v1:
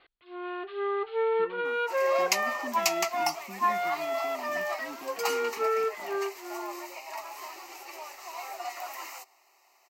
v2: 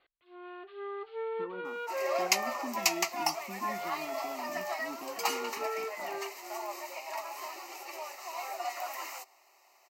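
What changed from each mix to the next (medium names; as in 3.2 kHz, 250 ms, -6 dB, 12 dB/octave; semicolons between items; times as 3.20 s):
first sound -10.0 dB; master: add peaking EQ 580 Hz +4 dB 0.34 oct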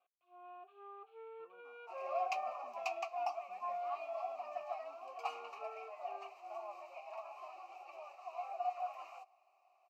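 speech -8.0 dB; master: add vowel filter a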